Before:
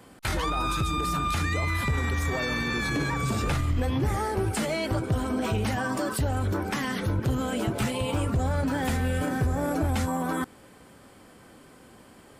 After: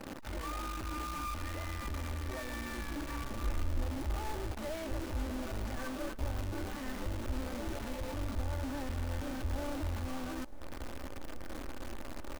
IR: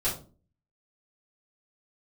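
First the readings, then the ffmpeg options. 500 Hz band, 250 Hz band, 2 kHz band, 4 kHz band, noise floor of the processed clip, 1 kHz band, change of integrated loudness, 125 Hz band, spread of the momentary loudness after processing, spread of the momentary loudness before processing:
-11.5 dB, -12.0 dB, -13.5 dB, -12.0 dB, -42 dBFS, -12.0 dB, -12.0 dB, -12.5 dB, 8 LU, 2 LU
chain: -filter_complex "[0:a]bandreject=f=960:w=20,volume=33.5,asoftclip=hard,volume=0.0299,highshelf=f=9000:g=6.5,aecho=1:1:3.4:0.51,acompressor=threshold=0.00631:ratio=3,alimiter=level_in=6.68:limit=0.0631:level=0:latency=1:release=56,volume=0.15,adynamicsmooth=sensitivity=8:basefreq=960,acrusher=bits=7:mode=log:mix=0:aa=0.000001,asplit=2[s0][s1];[s1]adelay=858,lowpass=f=1600:p=1,volume=0.106,asplit=2[s2][s3];[s3]adelay=858,lowpass=f=1600:p=1,volume=0.53,asplit=2[s4][s5];[s5]adelay=858,lowpass=f=1600:p=1,volume=0.53,asplit=2[s6][s7];[s7]adelay=858,lowpass=f=1600:p=1,volume=0.53[s8];[s0][s2][s4][s6][s8]amix=inputs=5:normalize=0,acrusher=bits=9:dc=4:mix=0:aa=0.000001,asubboost=boost=7:cutoff=51,volume=2.24"

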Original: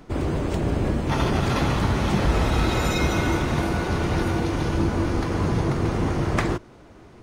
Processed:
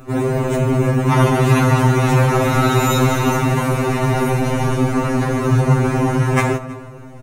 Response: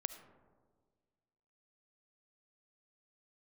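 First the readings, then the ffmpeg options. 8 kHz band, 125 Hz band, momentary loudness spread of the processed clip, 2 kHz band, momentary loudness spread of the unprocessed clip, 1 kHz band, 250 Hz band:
+8.5 dB, +8.5 dB, 5 LU, +6.0 dB, 3 LU, +8.0 dB, +6.5 dB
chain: -filter_complex "[0:a]equalizer=f=4700:t=o:w=0.42:g=-12,bandreject=f=3300:w=7.2,aecho=1:1:320:0.0708,asplit=2[s0][s1];[1:a]atrim=start_sample=2205,highshelf=f=8000:g=9[s2];[s1][s2]afir=irnorm=-1:irlink=0,volume=2.66[s3];[s0][s3]amix=inputs=2:normalize=0,afftfilt=real='re*2.45*eq(mod(b,6),0)':imag='im*2.45*eq(mod(b,6),0)':win_size=2048:overlap=0.75"

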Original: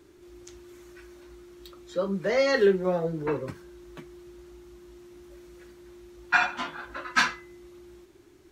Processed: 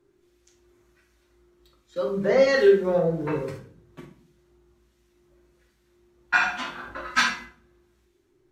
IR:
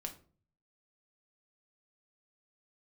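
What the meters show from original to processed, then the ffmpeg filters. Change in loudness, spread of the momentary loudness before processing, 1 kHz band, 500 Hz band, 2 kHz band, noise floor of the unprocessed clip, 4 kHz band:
+3.0 dB, 14 LU, +1.0 dB, +4.5 dB, +2.0 dB, -55 dBFS, +2.0 dB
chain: -filter_complex "[0:a]acrossover=split=1600[s0][s1];[s0]aeval=exprs='val(0)*(1-0.5/2+0.5/2*cos(2*PI*1.3*n/s))':c=same[s2];[s1]aeval=exprs='val(0)*(1-0.5/2-0.5/2*cos(2*PI*1.3*n/s))':c=same[s3];[s2][s3]amix=inputs=2:normalize=0,agate=range=0.224:threshold=0.00562:ratio=16:detection=peak[s4];[1:a]atrim=start_sample=2205,asetrate=29106,aresample=44100[s5];[s4][s5]afir=irnorm=-1:irlink=0,volume=1.58"

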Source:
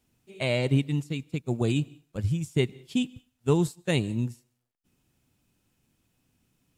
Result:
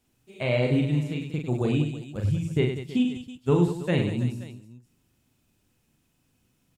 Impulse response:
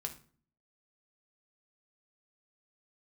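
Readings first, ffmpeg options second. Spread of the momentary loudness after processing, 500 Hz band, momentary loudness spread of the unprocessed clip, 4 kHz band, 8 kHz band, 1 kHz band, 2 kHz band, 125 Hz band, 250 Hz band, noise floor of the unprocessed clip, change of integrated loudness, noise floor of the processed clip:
8 LU, +2.5 dB, 8 LU, -2.0 dB, no reading, +2.0 dB, +0.5 dB, +2.0 dB, +2.5 dB, -77 dBFS, +2.0 dB, -70 dBFS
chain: -filter_complex "[0:a]asplit=2[s0][s1];[s1]aecho=0:1:40|100|190|325|527.5:0.631|0.398|0.251|0.158|0.1[s2];[s0][s2]amix=inputs=2:normalize=0,acrossover=split=3100[s3][s4];[s4]acompressor=threshold=0.00316:ratio=4:attack=1:release=60[s5];[s3][s5]amix=inputs=2:normalize=0"

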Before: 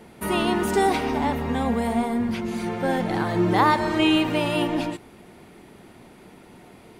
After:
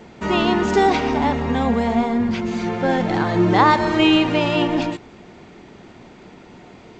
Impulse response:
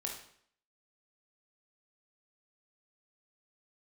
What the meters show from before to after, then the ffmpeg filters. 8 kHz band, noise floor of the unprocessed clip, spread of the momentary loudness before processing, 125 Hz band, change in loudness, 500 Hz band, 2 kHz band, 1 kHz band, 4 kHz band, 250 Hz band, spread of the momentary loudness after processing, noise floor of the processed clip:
no reading, -49 dBFS, 8 LU, +4.5 dB, +4.5 dB, +4.5 dB, +4.5 dB, +4.5 dB, +4.5 dB, +4.5 dB, 8 LU, -44 dBFS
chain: -af "volume=1.68" -ar 16000 -c:a g722

